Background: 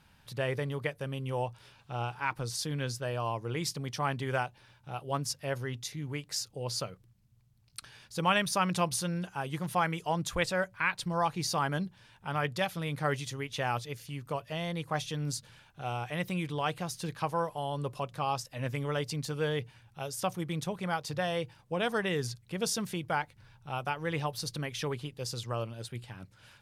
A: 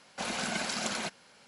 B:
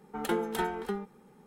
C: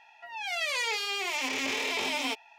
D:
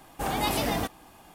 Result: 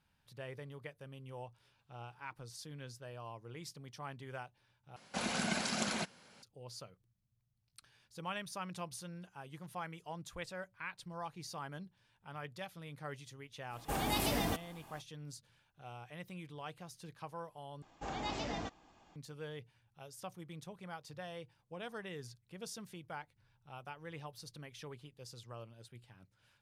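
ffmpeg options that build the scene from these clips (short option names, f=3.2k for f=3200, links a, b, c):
-filter_complex "[4:a]asplit=2[a][b];[0:a]volume=-14.5dB[c];[1:a]equalizer=f=130:w=0.59:g=6.5[d];[a]acrossover=split=370|1900[e][f][g];[f]acompressor=threshold=-30dB:ratio=6:attack=5.4:release=303:knee=2.83:detection=peak[h];[e][h][g]amix=inputs=3:normalize=0[i];[b]aresample=16000,aresample=44100[j];[c]asplit=3[k][l][m];[k]atrim=end=4.964[n];[d]atrim=end=1.47,asetpts=PTS-STARTPTS,volume=-3.5dB[o];[l]atrim=start=6.426:end=17.824[p];[j]atrim=end=1.34,asetpts=PTS-STARTPTS,volume=-12dB[q];[m]atrim=start=19.156[r];[i]atrim=end=1.34,asetpts=PTS-STARTPTS,volume=-5dB,afade=t=in:d=0.05,afade=t=out:st=1.29:d=0.05,adelay=13690[s];[n][o]acrossfade=d=0.004:c1=hsin:c2=hsin[t];[t][p]acrossfade=d=0.004:c1=hsin:c2=hsin[u];[u][q]acrossfade=d=0.004:c1=hsin:c2=hsin[v];[v][r]acrossfade=d=0.004:c1=hsin:c2=hsin[w];[w][s]amix=inputs=2:normalize=0"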